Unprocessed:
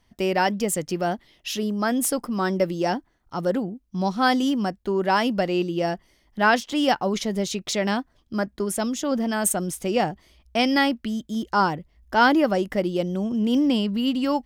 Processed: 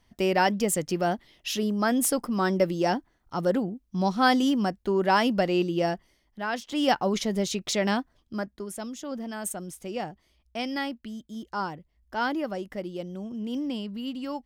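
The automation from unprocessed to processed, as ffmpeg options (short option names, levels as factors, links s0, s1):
-af "volume=3.55,afade=t=out:st=5.82:d=0.65:silence=0.237137,afade=t=in:st=6.47:d=0.47:silence=0.251189,afade=t=out:st=7.95:d=0.69:silence=0.354813"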